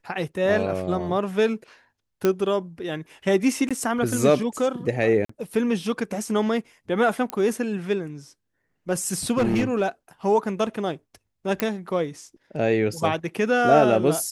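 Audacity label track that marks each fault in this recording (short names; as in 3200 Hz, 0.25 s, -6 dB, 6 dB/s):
2.250000	2.250000	pop -8 dBFS
3.690000	3.710000	gap 16 ms
5.250000	5.290000	gap 44 ms
7.300000	7.300000	pop -12 dBFS
9.370000	9.820000	clipped -17 dBFS
11.600000	11.600000	pop -7 dBFS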